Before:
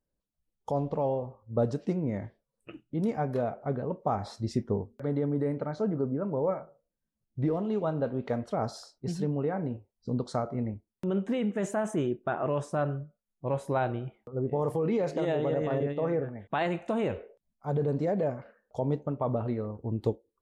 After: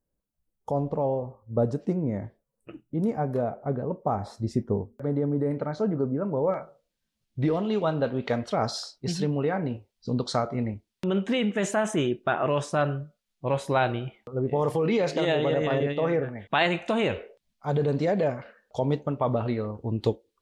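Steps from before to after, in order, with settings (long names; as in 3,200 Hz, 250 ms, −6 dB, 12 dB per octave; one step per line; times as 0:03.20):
parametric band 3,500 Hz −7 dB 2.2 octaves, from 0:05.51 +2.5 dB, from 0:06.54 +11.5 dB
level +3 dB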